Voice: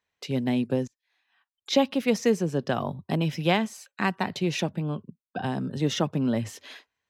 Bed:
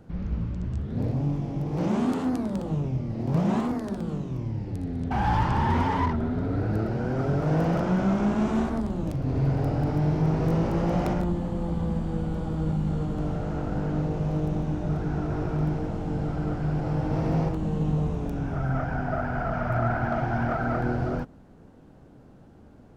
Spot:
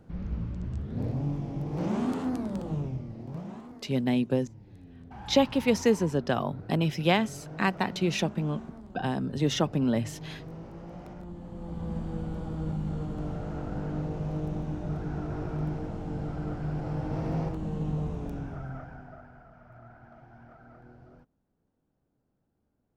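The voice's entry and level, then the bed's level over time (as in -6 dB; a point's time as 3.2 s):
3.60 s, -0.5 dB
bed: 2.82 s -4 dB
3.6 s -18.5 dB
11.09 s -18.5 dB
11.97 s -5.5 dB
18.34 s -5.5 dB
19.5 s -26 dB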